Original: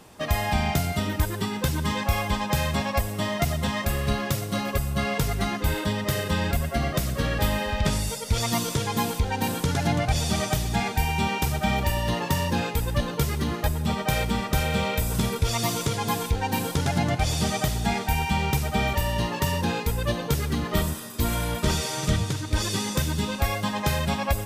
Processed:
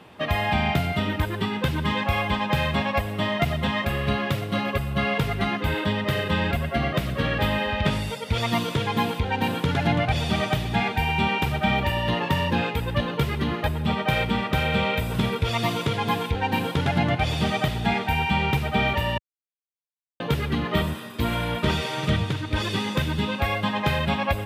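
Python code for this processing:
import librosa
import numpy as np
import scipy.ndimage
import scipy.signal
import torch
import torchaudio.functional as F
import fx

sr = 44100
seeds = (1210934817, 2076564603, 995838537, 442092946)

y = fx.edit(x, sr, fx.silence(start_s=19.18, length_s=1.02), tone=tone)
y = scipy.signal.sosfilt(scipy.signal.butter(2, 80.0, 'highpass', fs=sr, output='sos'), y)
y = fx.high_shelf_res(y, sr, hz=4400.0, db=-12.0, q=1.5)
y = F.gain(torch.from_numpy(y), 2.0).numpy()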